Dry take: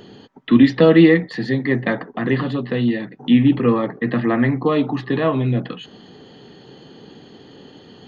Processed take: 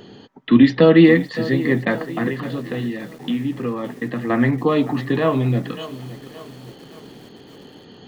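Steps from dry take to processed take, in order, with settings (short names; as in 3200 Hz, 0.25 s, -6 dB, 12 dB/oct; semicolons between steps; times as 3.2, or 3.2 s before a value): 2.28–4.3 compressor 2.5:1, threshold -25 dBFS, peak gain reduction 11 dB; lo-fi delay 0.565 s, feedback 55%, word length 6-bit, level -15 dB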